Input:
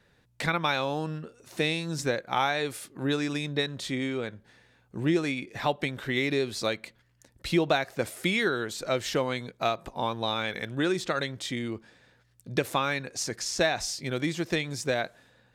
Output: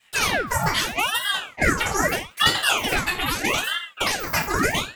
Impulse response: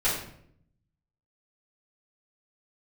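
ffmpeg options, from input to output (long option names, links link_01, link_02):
-filter_complex "[0:a]equalizer=frequency=170:width_type=o:width=1.1:gain=9,asetrate=138474,aresample=44100[link_01];[1:a]atrim=start_sample=2205,afade=type=out:start_time=0.38:duration=0.01,atrim=end_sample=17199,asetrate=74970,aresample=44100[link_02];[link_01][link_02]afir=irnorm=-1:irlink=0,aeval=exprs='val(0)*sin(2*PI*1400*n/s+1400*0.75/0.79*sin(2*PI*0.79*n/s))':channel_layout=same"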